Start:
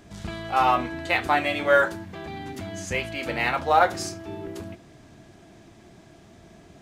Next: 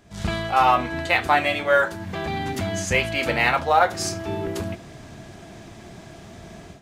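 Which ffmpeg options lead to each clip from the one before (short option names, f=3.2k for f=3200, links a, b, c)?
-af "dynaudnorm=f=110:g=3:m=13.5dB,equalizer=f=310:t=o:w=0.58:g=-4.5,volume=-4dB"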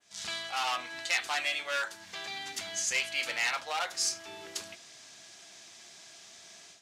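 -af "asoftclip=type=hard:threshold=-15dB,bandpass=f=5.8k:t=q:w=1.2:csg=0,adynamicequalizer=threshold=0.00398:dfrequency=5400:dqfactor=0.74:tfrequency=5400:tqfactor=0.74:attack=5:release=100:ratio=0.375:range=2.5:mode=cutabove:tftype=bell,volume=4dB"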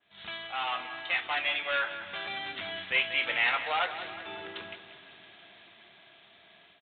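-af "dynaudnorm=f=230:g=13:m=5dB,aresample=8000,acrusher=bits=5:mode=log:mix=0:aa=0.000001,aresample=44100,aecho=1:1:184|368|552|736|920|1104:0.251|0.141|0.0788|0.0441|0.0247|0.0138,volume=-1dB"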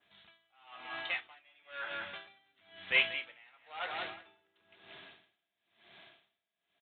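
-af "aeval=exprs='val(0)*pow(10,-35*(0.5-0.5*cos(2*PI*1*n/s))/20)':c=same"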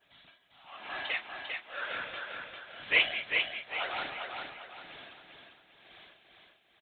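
-filter_complex "[0:a]afftfilt=real='hypot(re,im)*cos(2*PI*random(0))':imag='hypot(re,im)*sin(2*PI*random(1))':win_size=512:overlap=0.75,asplit=2[a][b];[b]aecho=0:1:398|796|1194|1592|1990:0.596|0.232|0.0906|0.0353|0.0138[c];[a][c]amix=inputs=2:normalize=0,volume=9dB"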